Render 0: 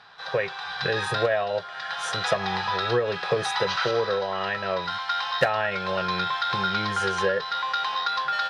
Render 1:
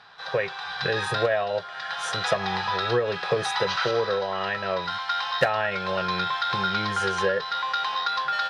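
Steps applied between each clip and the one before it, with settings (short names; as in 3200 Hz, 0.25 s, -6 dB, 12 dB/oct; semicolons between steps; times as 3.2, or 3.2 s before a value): nothing audible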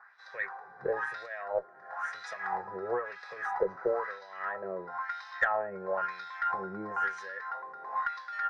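EQ curve 2000 Hz 0 dB, 3100 Hz -28 dB, 5900 Hz -4 dB; LFO band-pass sine 1 Hz 310–3800 Hz; added harmonics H 4 -31 dB, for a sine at -13 dBFS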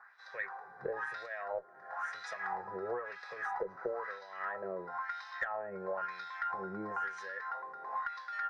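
compressor 6:1, threshold -32 dBFS, peak gain reduction 10 dB; gain -1.5 dB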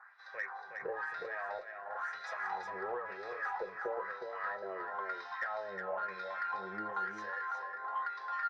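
flange 0.43 Hz, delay 7.7 ms, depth 4.4 ms, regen -55%; overdrive pedal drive 9 dB, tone 2800 Hz, clips at -26 dBFS; echo 0.364 s -5.5 dB; gain +1 dB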